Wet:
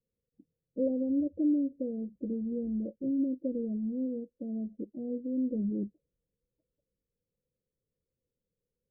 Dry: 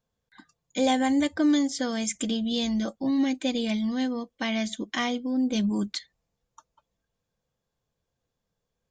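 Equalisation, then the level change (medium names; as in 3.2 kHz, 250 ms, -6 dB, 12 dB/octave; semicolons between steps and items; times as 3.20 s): steep low-pass 550 Hz 72 dB/octave; bass shelf 430 Hz -7.5 dB; 0.0 dB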